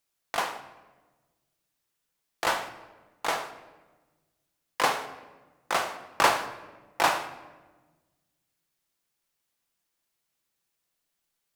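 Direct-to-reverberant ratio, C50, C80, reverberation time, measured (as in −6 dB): 8.0 dB, 11.5 dB, 13.0 dB, 1.3 s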